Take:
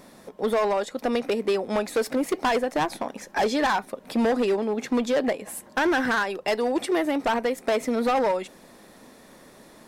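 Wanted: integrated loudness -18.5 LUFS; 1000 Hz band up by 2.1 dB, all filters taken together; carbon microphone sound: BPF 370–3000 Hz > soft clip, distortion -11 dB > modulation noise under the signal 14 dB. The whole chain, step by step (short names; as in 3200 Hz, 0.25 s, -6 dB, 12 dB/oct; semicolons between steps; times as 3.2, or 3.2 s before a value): BPF 370–3000 Hz; bell 1000 Hz +3 dB; soft clip -22.5 dBFS; modulation noise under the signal 14 dB; gain +11 dB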